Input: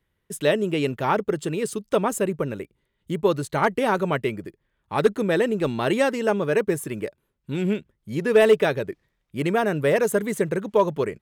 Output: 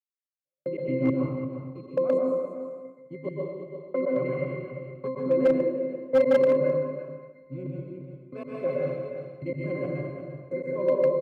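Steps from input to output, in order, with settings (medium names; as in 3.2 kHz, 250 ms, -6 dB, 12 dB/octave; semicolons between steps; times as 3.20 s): chunks repeated in reverse 139 ms, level -2 dB; dynamic bell 380 Hz, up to +6 dB, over -32 dBFS, Q 1.2; pitch-class resonator C, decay 0.6 s; expander -54 dBFS; comb 5.4 ms, depth 55%; trance gate "......x.xx" 137 bpm -60 dB; high-pass 200 Hz 12 dB/octave; on a send: delay 347 ms -8.5 dB; on the sum: plate-style reverb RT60 1.2 s, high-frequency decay 0.9×, pre-delay 110 ms, DRR -3 dB; in parallel at +0.5 dB: compression 5:1, threshold -47 dBFS, peak gain reduction 19 dB; on the sum: overload inside the chain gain 24 dB; three bands expanded up and down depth 40%; trim +8 dB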